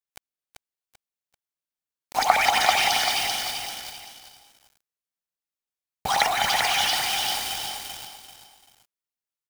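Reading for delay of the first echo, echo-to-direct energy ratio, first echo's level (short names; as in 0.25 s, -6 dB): 0.389 s, -3.5 dB, -4.0 dB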